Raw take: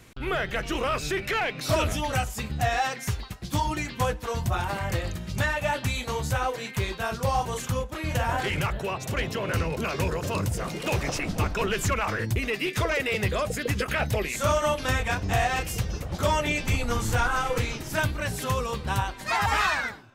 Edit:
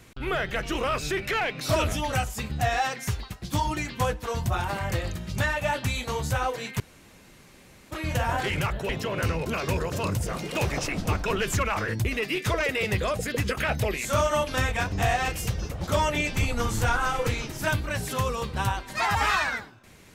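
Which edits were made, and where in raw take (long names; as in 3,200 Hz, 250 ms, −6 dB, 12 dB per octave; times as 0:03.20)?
0:06.80–0:07.91: fill with room tone
0:08.89–0:09.20: remove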